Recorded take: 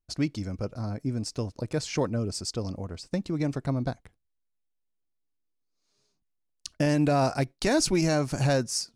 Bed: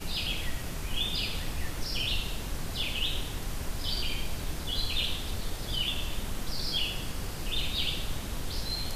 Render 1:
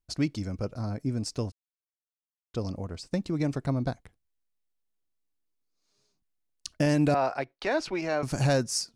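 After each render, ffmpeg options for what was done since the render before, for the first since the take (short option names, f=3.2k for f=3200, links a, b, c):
-filter_complex "[0:a]asettb=1/sr,asplit=3[a][b][c];[a]atrim=end=7.144[d];[b]atrim=start=7.14:end=8.23,asetpts=PTS-STARTPTS,afade=t=in:d=0.004:c=qsin,afade=t=out:st=1.086:d=0.004:c=qsin,acrossover=split=390 3700:gain=0.158 1 0.0708[e][f][g];[e][f][g]amix=inputs=3:normalize=0[h];[c]atrim=start=8.226[i];[d][h]acrossfade=d=0.004:c1=hsin:c2=qsin[j];[j][i]acrossfade=d=0.004:c1=qsin:c2=hsin,asplit=3[k][l][m];[k]atrim=end=1.52,asetpts=PTS-STARTPTS,afade=t=out:st=1.516:d=0.004:c=hsin[n];[l]atrim=start=1.52:end=2.54,asetpts=PTS-STARTPTS,volume=0[o];[m]atrim=start=2.54,asetpts=PTS-STARTPTS,afade=t=in:d=0.004:c=hsin[p];[n][o][p]concat=n=3:v=0:a=1"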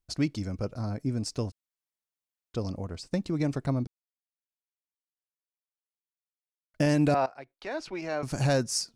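-filter_complex "[0:a]asplit=4[a][b][c][d];[a]atrim=end=3.87,asetpts=PTS-STARTPTS,afade=t=out:st=3.866:d=0.004:c=hsin[e];[b]atrim=start=3.87:end=6.74,asetpts=PTS-STARTPTS,volume=0[f];[c]atrim=start=6.74:end=7.26,asetpts=PTS-STARTPTS,afade=t=in:d=0.004:c=hsin,afade=t=out:st=0.516:d=0.004:c=hsin:silence=0.141254[g];[d]atrim=start=7.26,asetpts=PTS-STARTPTS,afade=t=in:d=1.39:silence=0.141254[h];[e][f][g][h]concat=n=4:v=0:a=1"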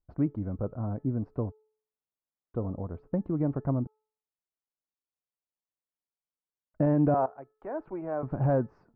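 -af "lowpass=f=1.2k:w=0.5412,lowpass=f=1.2k:w=1.3066,bandreject=f=432.4:t=h:w=4,bandreject=f=864.8:t=h:w=4,bandreject=f=1.2972k:t=h:w=4,bandreject=f=1.7296k:t=h:w=4"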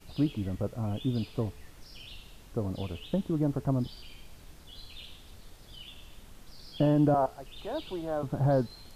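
-filter_complex "[1:a]volume=-16.5dB[a];[0:a][a]amix=inputs=2:normalize=0"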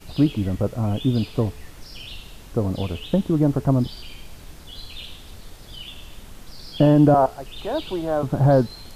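-af "volume=9.5dB"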